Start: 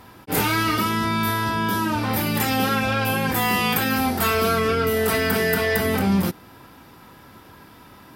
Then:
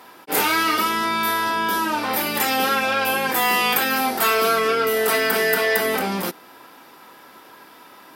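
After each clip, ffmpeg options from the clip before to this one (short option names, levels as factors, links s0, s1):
-af "highpass=380,volume=1.41"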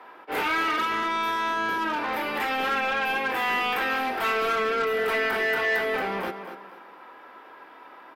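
-filter_complex "[0:a]acrossover=split=310 2700:gain=0.178 1 0.0708[s0][s1][s2];[s0][s1][s2]amix=inputs=3:normalize=0,aecho=1:1:241|482|723:0.282|0.0846|0.0254,acrossover=split=340|1700[s3][s4][s5];[s4]asoftclip=type=tanh:threshold=0.0398[s6];[s3][s6][s5]amix=inputs=3:normalize=0"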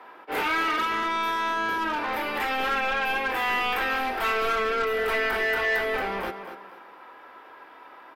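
-af "asubboost=boost=5:cutoff=72"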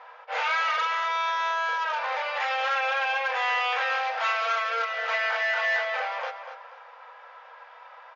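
-af "afftfilt=real='re*between(b*sr/4096,460,7000)':imag='im*between(b*sr/4096,460,7000)':win_size=4096:overlap=0.75"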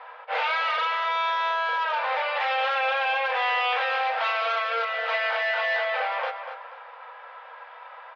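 -filter_complex "[0:a]lowpass=f=4200:w=0.5412,lowpass=f=4200:w=1.3066,acrossover=split=990|2600[s0][s1][s2];[s1]alimiter=level_in=1.88:limit=0.0631:level=0:latency=1:release=50,volume=0.531[s3];[s0][s3][s2]amix=inputs=3:normalize=0,volume=1.58"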